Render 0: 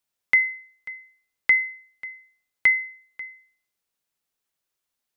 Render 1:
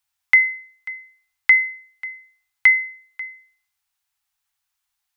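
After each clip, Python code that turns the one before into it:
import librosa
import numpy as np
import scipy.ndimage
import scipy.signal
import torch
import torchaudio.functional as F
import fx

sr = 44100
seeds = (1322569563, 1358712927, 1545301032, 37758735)

y = scipy.signal.sosfilt(scipy.signal.cheby1(4, 1.0, [110.0, 760.0], 'bandstop', fs=sr, output='sos'), x)
y = y * librosa.db_to_amplitude(5.0)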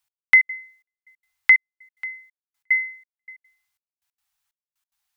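y = fx.step_gate(x, sr, bpm=183, pattern='x...x.xxx', floor_db=-60.0, edge_ms=4.5)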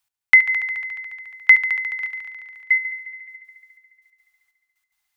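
y = fx.echo_heads(x, sr, ms=71, heads='all three', feedback_pct=68, wet_db=-15.5)
y = y * librosa.db_to_amplitude(2.0)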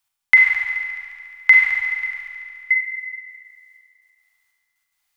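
y = fx.rev_schroeder(x, sr, rt60_s=1.6, comb_ms=33, drr_db=-1.0)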